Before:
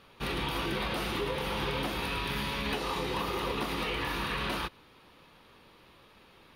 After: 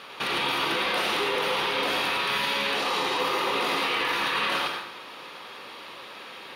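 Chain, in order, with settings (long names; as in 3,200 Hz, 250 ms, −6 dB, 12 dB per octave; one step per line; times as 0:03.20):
meter weighting curve A
in parallel at −2.5 dB: compressor whose output falls as the input rises −37 dBFS
on the sum: brickwall limiter −28.5 dBFS, peak gain reduction 11 dB
convolution reverb RT60 0.70 s, pre-delay 72 ms, DRR 2.5 dB
level +9 dB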